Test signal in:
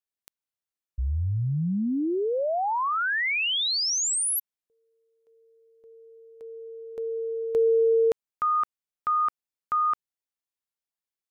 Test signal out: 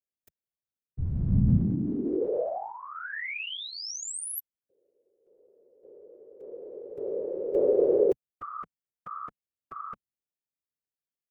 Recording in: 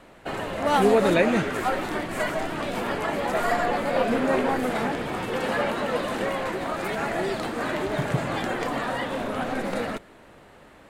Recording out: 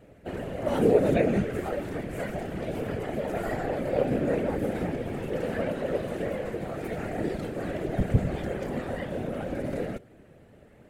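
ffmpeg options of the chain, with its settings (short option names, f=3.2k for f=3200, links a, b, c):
-af "equalizer=f=125:t=o:w=1:g=12,equalizer=f=500:t=o:w=1:g=7,equalizer=f=1k:t=o:w=1:g=-12,equalizer=f=4k:t=o:w=1:g=-7,equalizer=f=8k:t=o:w=1:g=-3,afftfilt=real='hypot(re,im)*cos(2*PI*random(0))':imag='hypot(re,im)*sin(2*PI*random(1))':win_size=512:overlap=0.75"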